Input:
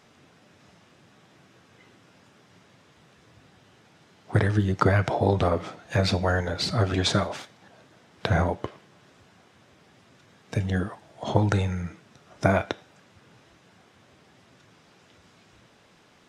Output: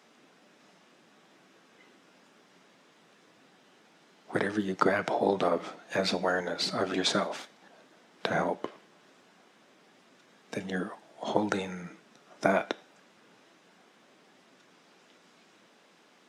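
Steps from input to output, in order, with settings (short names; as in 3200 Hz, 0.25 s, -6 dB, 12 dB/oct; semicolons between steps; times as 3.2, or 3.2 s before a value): HPF 200 Hz 24 dB/oct; gain -2.5 dB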